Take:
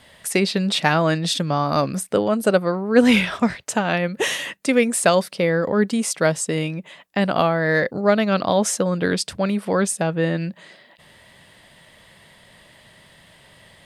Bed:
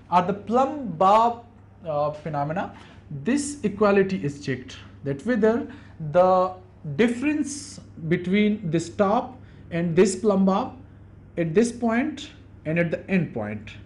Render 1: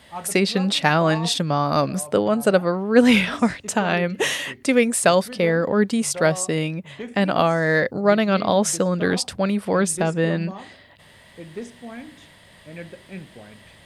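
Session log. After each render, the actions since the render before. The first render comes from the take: add bed -14.5 dB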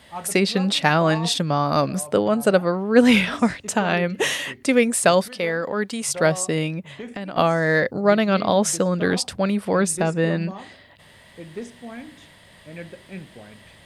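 5.28–6.09 low shelf 440 Hz -10.5 dB; 6.82–7.37 compressor 8:1, threshold -28 dBFS; 9.75–10.42 notch 3200 Hz, Q 11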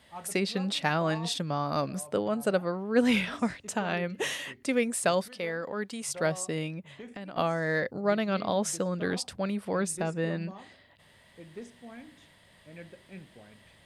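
gain -9.5 dB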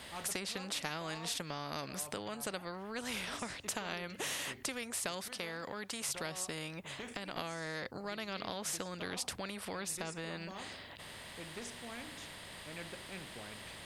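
compressor 2.5:1, threshold -37 dBFS, peak gain reduction 12.5 dB; spectral compressor 2:1

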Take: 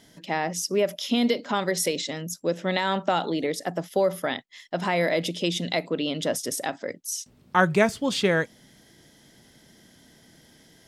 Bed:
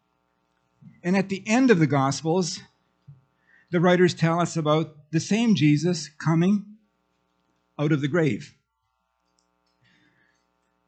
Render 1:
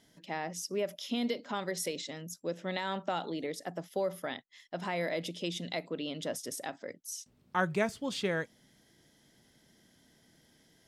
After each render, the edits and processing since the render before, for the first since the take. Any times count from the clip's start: gain -10 dB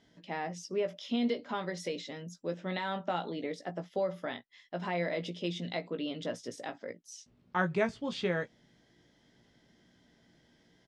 air absorption 120 m; doubler 17 ms -7 dB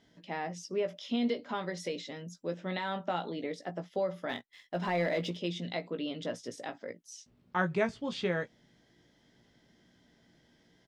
4.29–5.37 sample leveller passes 1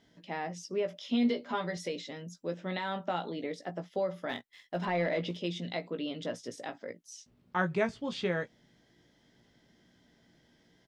1.11–1.77 doubler 12 ms -4 dB; 4.85–5.3 LPF 4200 Hz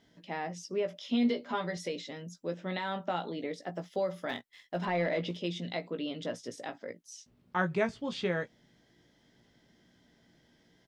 3.75–4.31 high shelf 4800 Hz +8.5 dB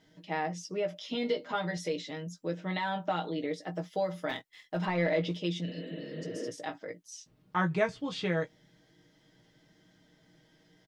5.69–6.44 spectral repair 210–4200 Hz both; comb 6.4 ms, depth 67%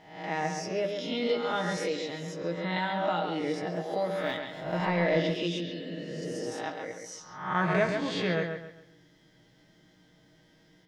spectral swells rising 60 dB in 0.69 s; on a send: analogue delay 0.135 s, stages 4096, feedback 33%, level -6 dB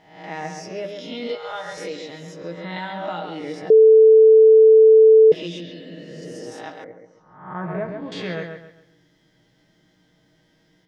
1.35–1.78 Chebyshev band-stop 120–520 Hz; 3.7–5.32 bleep 440 Hz -7 dBFS; 6.84–8.12 Bessel low-pass 930 Hz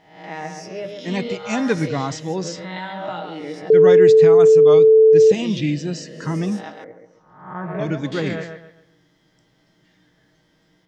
add bed -2.5 dB

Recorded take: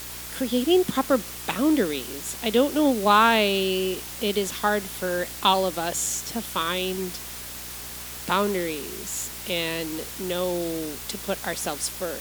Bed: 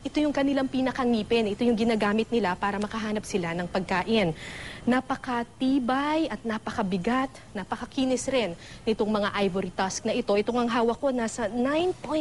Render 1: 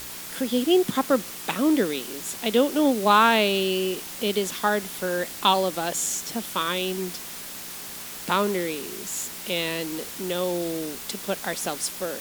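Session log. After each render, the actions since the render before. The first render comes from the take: de-hum 60 Hz, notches 2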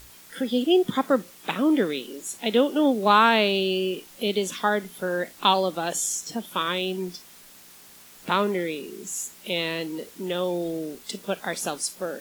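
noise print and reduce 12 dB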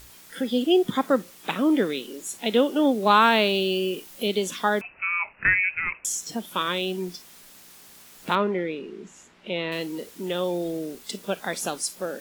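3.22–4.27 high shelf 11000 Hz +5.5 dB; 4.81–6.05 inverted band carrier 2800 Hz; 8.35–9.72 LPF 2500 Hz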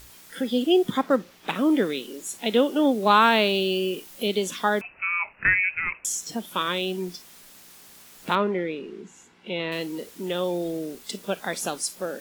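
0.98–1.55 median filter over 5 samples; 9.01–9.6 notch comb 610 Hz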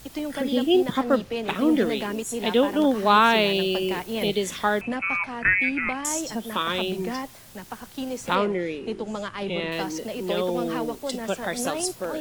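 add bed -6 dB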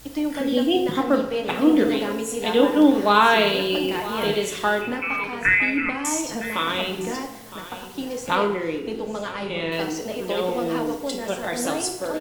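echo 0.962 s -15 dB; FDN reverb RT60 0.83 s, low-frequency decay 0.7×, high-frequency decay 0.8×, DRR 3 dB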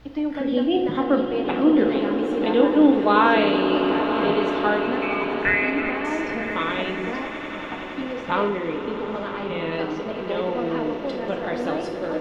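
air absorption 300 m; swelling echo 93 ms, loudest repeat 8, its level -16 dB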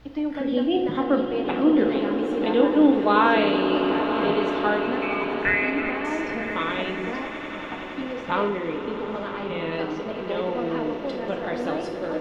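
gain -1.5 dB

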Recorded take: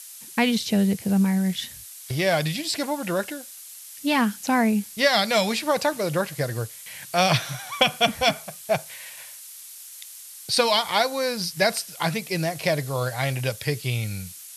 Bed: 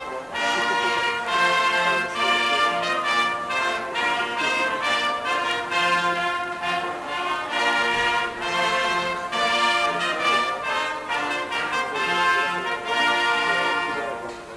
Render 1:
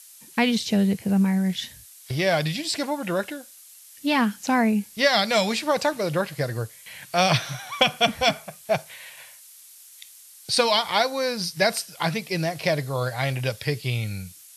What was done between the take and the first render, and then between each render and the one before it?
noise print and reduce 6 dB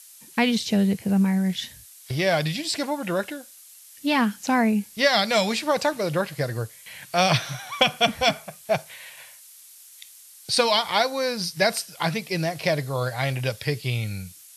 nothing audible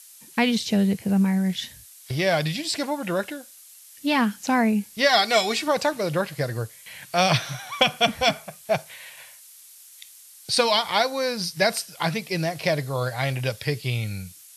5.09–5.68 comb 2.7 ms, depth 71%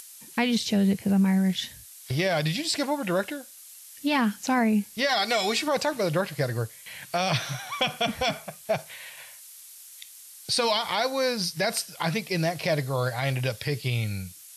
upward compressor, threshold -42 dBFS; limiter -15 dBFS, peak gain reduction 9 dB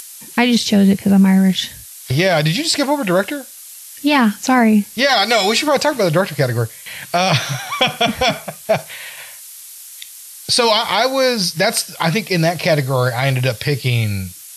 gain +10.5 dB

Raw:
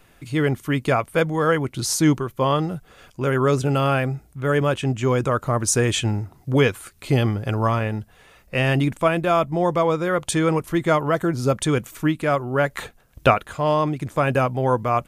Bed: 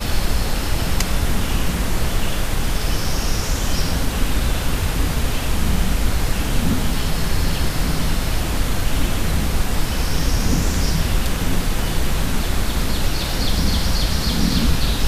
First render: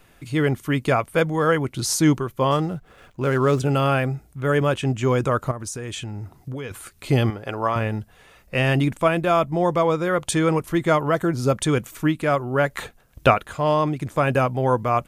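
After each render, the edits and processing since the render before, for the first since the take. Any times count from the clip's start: 2.51–3.6 median filter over 9 samples; 5.51–6.71 compressor 8:1, threshold -28 dBFS; 7.3–7.76 tone controls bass -13 dB, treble -6 dB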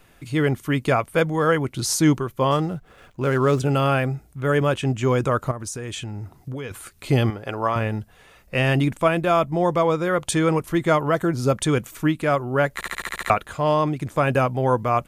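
12.74 stutter in place 0.07 s, 8 plays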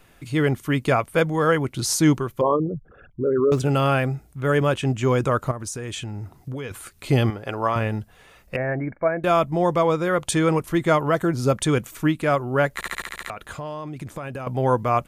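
2.41–3.52 formant sharpening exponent 3; 8.56–9.24 rippled Chebyshev low-pass 2300 Hz, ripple 9 dB; 13.02–14.47 compressor 12:1, threshold -28 dBFS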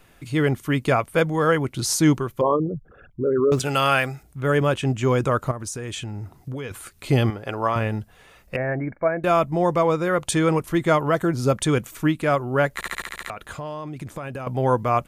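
3.59–4.23 tilt shelf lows -7.5 dB, about 700 Hz; 8.58–10.28 notch 3300 Hz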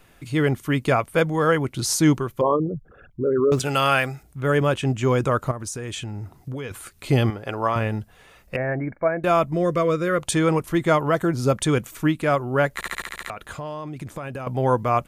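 9.53–10.2 Butterworth band-stop 840 Hz, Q 2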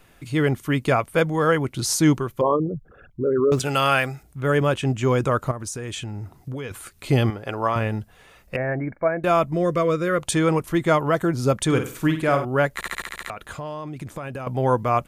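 11.65–12.45 flutter echo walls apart 8.6 m, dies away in 0.4 s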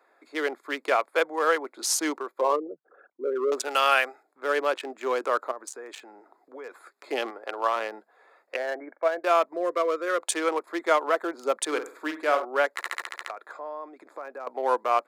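Wiener smoothing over 15 samples; Bessel high-pass 580 Hz, order 8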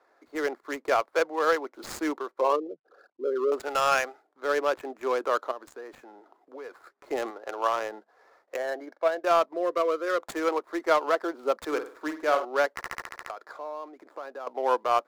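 median filter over 15 samples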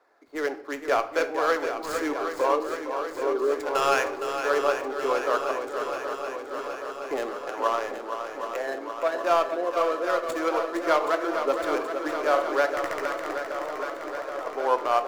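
swung echo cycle 0.774 s, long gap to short 1.5:1, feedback 69%, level -8 dB; shoebox room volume 130 m³, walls mixed, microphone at 0.31 m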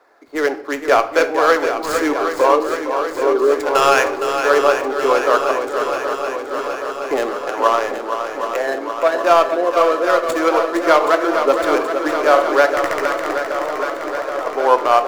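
gain +10 dB; limiter -1 dBFS, peak gain reduction 2 dB

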